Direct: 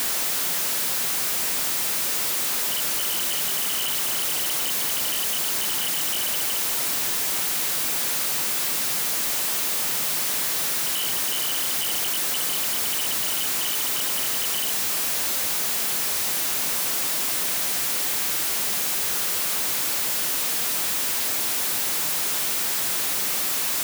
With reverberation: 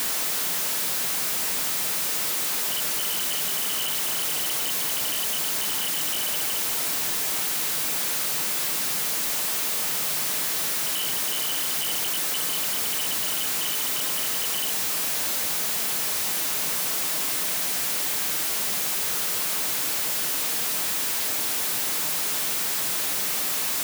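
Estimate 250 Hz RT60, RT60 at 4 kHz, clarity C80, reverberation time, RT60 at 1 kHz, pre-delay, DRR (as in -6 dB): 0.80 s, 0.30 s, 23.0 dB, 0.55 s, 0.45 s, 5 ms, 10.5 dB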